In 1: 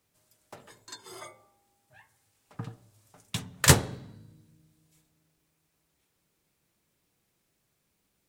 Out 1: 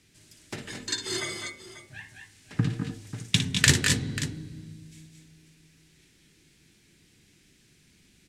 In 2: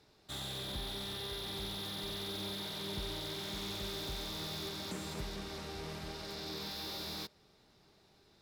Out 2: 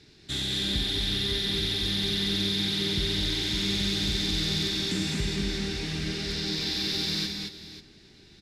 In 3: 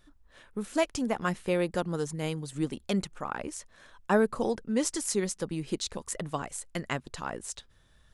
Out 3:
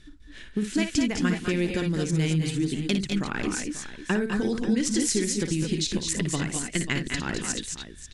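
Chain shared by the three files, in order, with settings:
LPF 7600 Hz 12 dB/oct; band shelf 800 Hz -13.5 dB; compressor 6:1, threshold -34 dBFS; on a send: tapped delay 57/202/222/226/539 ms -9/-9/-7.5/-9.5/-13.5 dB; on the sum: match loudness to -27 LUFS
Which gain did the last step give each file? +15.5, +12.0, +11.0 dB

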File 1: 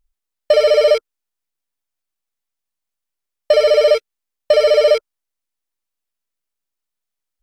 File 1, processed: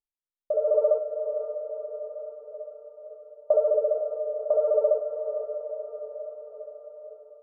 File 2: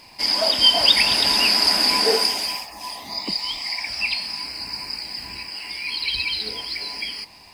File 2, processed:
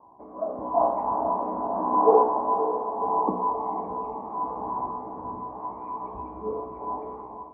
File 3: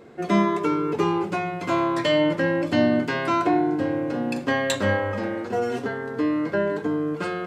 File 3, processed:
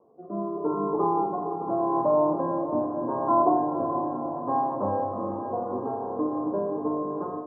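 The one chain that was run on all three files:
tilt +4 dB/oct; compressor 3:1, threshold -14 dBFS; resonator 62 Hz, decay 0.59 s, harmonics all, mix 80%; rotary speaker horn 0.8 Hz; notches 60/120/180/240/300/360/420/480/540 Hz; diffused feedback echo 0.511 s, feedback 62%, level -8 dB; AGC gain up to 9 dB; Chebyshev low-pass 1100 Hz, order 6; bell 72 Hz +2.5 dB 0.77 oct; match loudness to -27 LUFS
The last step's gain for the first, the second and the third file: -1.0, +14.0, +5.0 dB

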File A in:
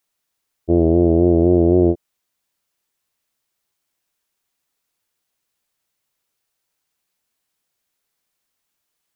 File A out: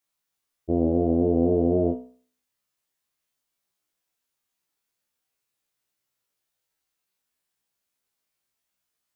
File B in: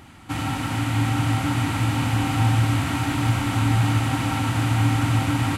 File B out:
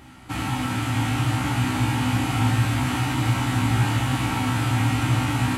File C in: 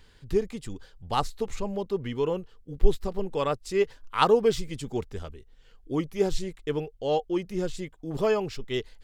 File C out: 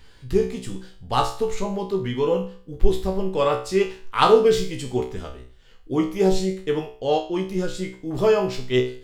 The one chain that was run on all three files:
resonator 63 Hz, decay 0.43 s, harmonics all, mix 90%; match loudness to -23 LUFS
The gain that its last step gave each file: +3.0, +8.5, +14.0 dB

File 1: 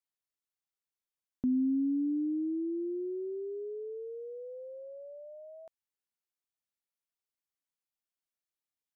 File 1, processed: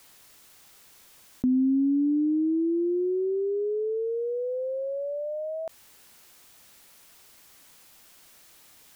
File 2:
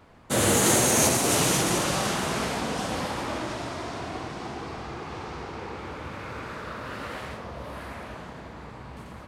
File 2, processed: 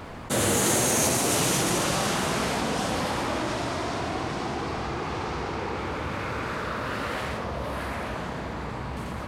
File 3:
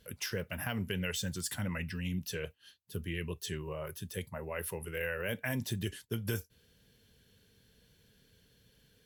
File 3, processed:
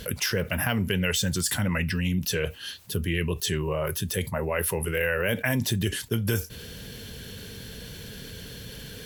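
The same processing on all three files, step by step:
fast leveller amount 50%; match loudness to -27 LUFS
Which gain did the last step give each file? +5.5, -3.0, +8.0 dB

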